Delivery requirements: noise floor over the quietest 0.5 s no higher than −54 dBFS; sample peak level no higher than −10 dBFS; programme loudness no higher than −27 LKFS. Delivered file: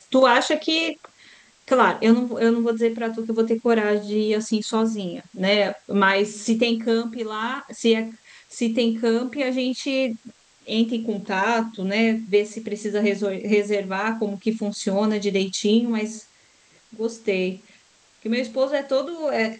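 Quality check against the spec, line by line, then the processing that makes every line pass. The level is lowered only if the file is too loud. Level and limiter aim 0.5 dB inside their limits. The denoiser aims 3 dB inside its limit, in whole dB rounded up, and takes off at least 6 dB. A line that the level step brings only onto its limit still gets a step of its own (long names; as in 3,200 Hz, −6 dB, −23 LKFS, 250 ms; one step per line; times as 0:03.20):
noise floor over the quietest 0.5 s −57 dBFS: in spec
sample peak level −4.5 dBFS: out of spec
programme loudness −22.5 LKFS: out of spec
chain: level −5 dB
brickwall limiter −10.5 dBFS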